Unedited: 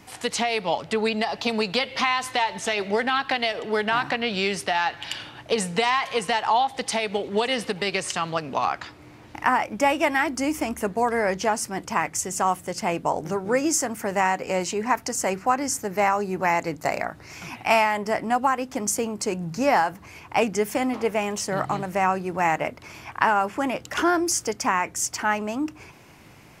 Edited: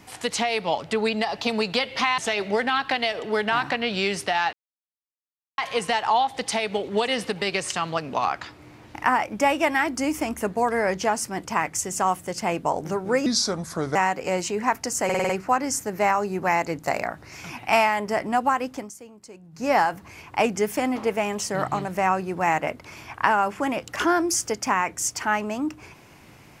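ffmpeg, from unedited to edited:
ffmpeg -i in.wav -filter_complex "[0:a]asplit=13[link_01][link_02][link_03][link_04][link_05][link_06][link_07][link_08][link_09][link_10][link_11][link_12][link_13];[link_01]atrim=end=2.182[link_14];[link_02]atrim=start=2.578:end=4.93,asetpts=PTS-STARTPTS,afade=type=out:start_time=2.348:duration=0.004:curve=hsin[link_15];[link_03]atrim=start=4.93:end=5.98,asetpts=PTS-STARTPTS,volume=0[link_16];[link_04]atrim=start=5.98:end=13.664,asetpts=PTS-STARTPTS,afade=type=in:duration=0.004:curve=hsin[link_17];[link_05]atrim=start=13.66:end=14.18,asetpts=PTS-STARTPTS,asetrate=33075,aresample=44100[link_18];[link_06]atrim=start=14.176:end=15.322[link_19];[link_07]atrim=start=15.268:end=15.322[link_20];[link_08]atrim=start=15.268:end=15.322[link_21];[link_09]atrim=start=15.268:end=15.322[link_22];[link_10]atrim=start=15.268:end=15.322[link_23];[link_11]atrim=start=15.268:end=18.89,asetpts=PTS-STARTPTS,afade=type=out:start_time=3.402:duration=0.22:silence=0.125893[link_24];[link_12]atrim=start=18.89:end=19.49,asetpts=PTS-STARTPTS,volume=-18dB[link_25];[link_13]atrim=start=19.49,asetpts=PTS-STARTPTS,afade=type=in:duration=0.22:silence=0.125893[link_26];[link_15][link_16][link_17]concat=n=3:v=0:a=1[link_27];[link_14][link_27]acrossfade=duration=0.004:curve1=hsin:curve2=hsin[link_28];[link_28][link_18]acrossfade=duration=0.004:curve1=hsin:curve2=hsin[link_29];[link_29][link_19]acrossfade=duration=0.004:curve1=hsin:curve2=hsin[link_30];[link_30][link_20]acrossfade=duration=0.004:curve1=hsin:curve2=hsin[link_31];[link_31][link_21]acrossfade=duration=0.004:curve1=hsin:curve2=hsin[link_32];[link_32][link_22]acrossfade=duration=0.004:curve1=hsin:curve2=hsin[link_33];[link_33][link_23]acrossfade=duration=0.004:curve1=hsin:curve2=hsin[link_34];[link_24][link_25][link_26]concat=n=3:v=0:a=1[link_35];[link_34][link_35]acrossfade=duration=0.004:curve1=hsin:curve2=hsin" out.wav

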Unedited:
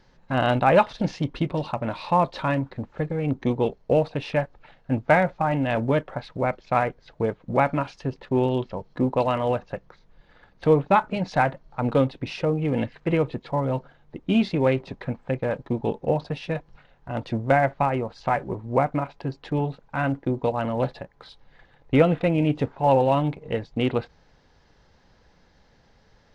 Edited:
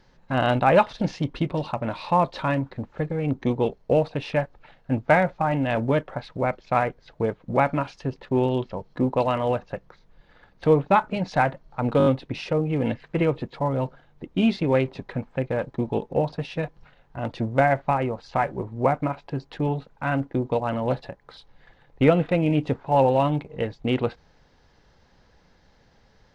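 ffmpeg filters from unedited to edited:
ffmpeg -i in.wav -filter_complex "[0:a]asplit=5[link_01][link_02][link_03][link_04][link_05];[link_01]atrim=end=12.002[link_06];[link_02]atrim=start=11.978:end=12.002[link_07];[link_03]atrim=start=11.978:end=12.002[link_08];[link_04]atrim=start=11.978:end=12.002[link_09];[link_05]atrim=start=11.978[link_10];[link_06][link_07]acrossfade=duration=0.004:curve1=hsin:curve2=hsin[link_11];[link_11][link_08]acrossfade=duration=0.004:curve1=hsin:curve2=hsin[link_12];[link_12][link_09]acrossfade=duration=0.004:curve1=hsin:curve2=hsin[link_13];[link_13][link_10]acrossfade=duration=0.004:curve1=hsin:curve2=hsin" out.wav

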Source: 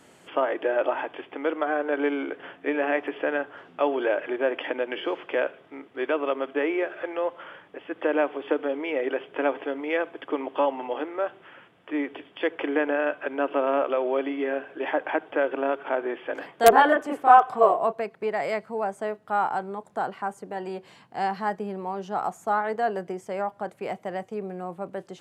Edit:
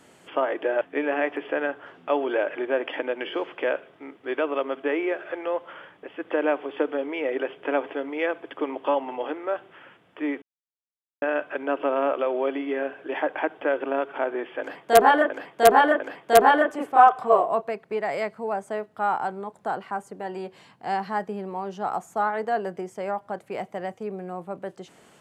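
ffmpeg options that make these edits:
ffmpeg -i in.wav -filter_complex "[0:a]asplit=6[link_01][link_02][link_03][link_04][link_05][link_06];[link_01]atrim=end=0.812[link_07];[link_02]atrim=start=2.518:end=12.13,asetpts=PTS-STARTPTS,afade=type=out:start_time=9.608:duration=0.004:curve=hsin[link_08];[link_03]atrim=start=12.13:end=12.93,asetpts=PTS-STARTPTS,volume=0[link_09];[link_04]atrim=start=12.93:end=17.012,asetpts=PTS-STARTPTS,afade=type=in:duration=0.004:curve=hsin[link_10];[link_05]atrim=start=16.308:end=17.012[link_11];[link_06]atrim=start=16.308[link_12];[link_08][link_09][link_10]concat=n=3:v=0:a=1[link_13];[link_07][link_13]acrossfade=duration=0.004:curve1=hsin:curve2=hsin[link_14];[link_14][link_11]acrossfade=duration=0.004:curve1=hsin:curve2=hsin[link_15];[link_15][link_12]acrossfade=duration=0.004:curve1=hsin:curve2=hsin" out.wav

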